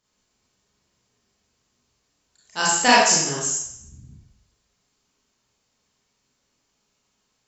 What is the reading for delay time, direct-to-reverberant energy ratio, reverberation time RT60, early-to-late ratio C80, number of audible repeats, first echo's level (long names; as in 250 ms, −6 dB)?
no echo audible, −6.5 dB, 0.70 s, 4.0 dB, no echo audible, no echo audible